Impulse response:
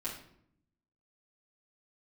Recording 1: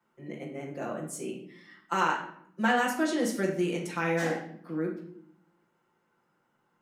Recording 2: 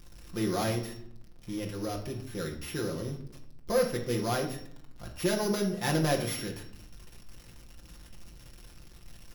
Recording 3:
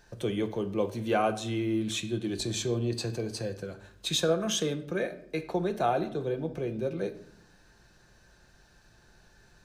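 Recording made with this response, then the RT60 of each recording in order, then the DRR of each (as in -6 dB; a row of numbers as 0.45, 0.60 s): 1; 0.70, 0.70, 0.70 s; -8.0, 0.0, 6.0 dB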